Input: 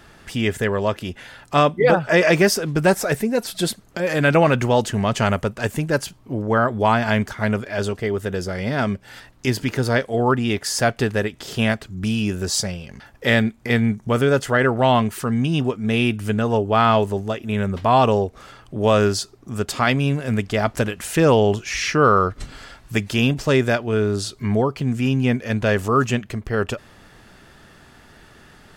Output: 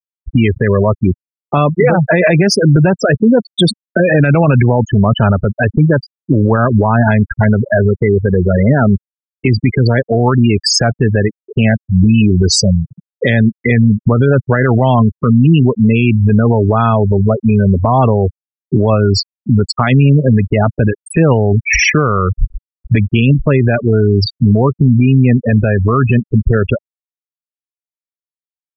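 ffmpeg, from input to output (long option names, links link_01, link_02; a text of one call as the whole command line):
ffmpeg -i in.wav -filter_complex "[0:a]asplit=2[link_01][link_02];[link_02]acompressor=threshold=-29dB:ratio=16,volume=-3dB[link_03];[link_01][link_03]amix=inputs=2:normalize=0,afftfilt=real='re*gte(hypot(re,im),0.178)':imag='im*gte(hypot(re,im),0.178)':win_size=1024:overlap=0.75,acrossover=split=180[link_04][link_05];[link_05]acompressor=threshold=-28dB:ratio=2[link_06];[link_04][link_06]amix=inputs=2:normalize=0,alimiter=level_in=19dB:limit=-1dB:release=50:level=0:latency=1,volume=-1dB" out.wav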